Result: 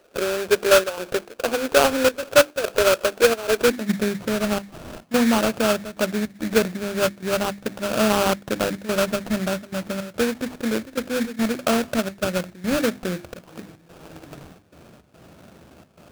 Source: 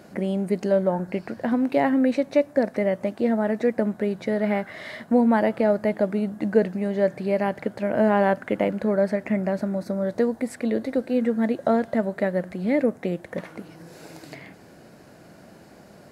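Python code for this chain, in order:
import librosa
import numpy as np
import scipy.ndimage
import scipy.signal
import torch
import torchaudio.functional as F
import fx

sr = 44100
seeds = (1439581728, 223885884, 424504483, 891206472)

y = fx.step_gate(x, sr, bpm=108, pattern='.xxxxx.xx', floor_db=-12.0, edge_ms=4.5)
y = fx.hum_notches(y, sr, base_hz=50, count=7)
y = fx.filter_sweep_highpass(y, sr, from_hz=450.0, to_hz=67.0, start_s=3.52, end_s=4.39, q=3.2)
y = fx.sample_hold(y, sr, seeds[0], rate_hz=2000.0, jitter_pct=20)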